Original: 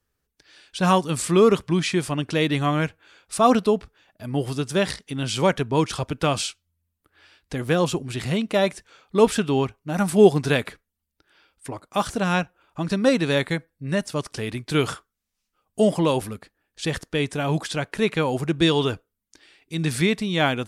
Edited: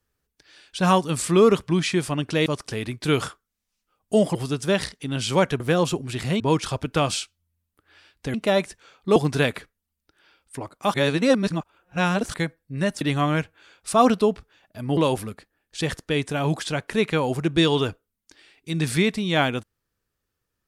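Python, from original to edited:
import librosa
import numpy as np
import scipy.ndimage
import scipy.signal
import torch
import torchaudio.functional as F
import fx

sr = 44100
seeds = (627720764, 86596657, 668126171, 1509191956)

y = fx.edit(x, sr, fx.swap(start_s=2.46, length_s=1.96, other_s=14.12, other_length_s=1.89),
    fx.move(start_s=7.61, length_s=0.8, to_s=5.67),
    fx.cut(start_s=9.23, length_s=1.04),
    fx.reverse_span(start_s=12.05, length_s=1.4), tone=tone)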